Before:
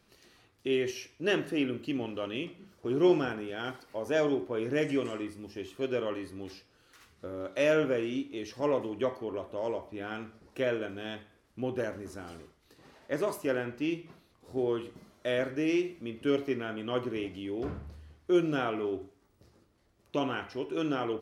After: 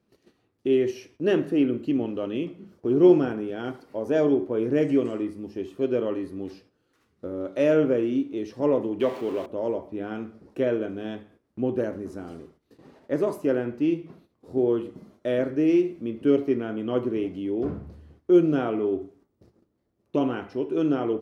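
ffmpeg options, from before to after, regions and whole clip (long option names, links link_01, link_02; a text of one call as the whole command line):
ffmpeg -i in.wav -filter_complex "[0:a]asettb=1/sr,asplit=3[link_01][link_02][link_03];[link_01]atrim=end=9.004[link_04];[link_02]atrim=start=9:end=9.46,asetpts=PTS-STARTPTS,afade=type=in:duration=0.004:curve=qsin,afade=type=out:start_time=0.456:duration=0.004:curve=qsin,aeval=exprs='val(0)+0.5*0.01*sgn(val(0))':channel_layout=same,highpass=frequency=210:poles=1,equalizer=frequency=2800:width=0.98:gain=8.5[link_05];[link_03]atrim=start=9.456[link_06];[link_04][link_05]acrossfade=duration=0.004:curve1=hsin:curve2=qsin[link_07];[link_07][link_06]acrossfade=duration=0.004:curve1=qsin:curve2=hsin,equalizer=frequency=260:width=0.34:gain=14,agate=range=-10dB:threshold=-49dB:ratio=16:detection=peak,volume=-5dB" out.wav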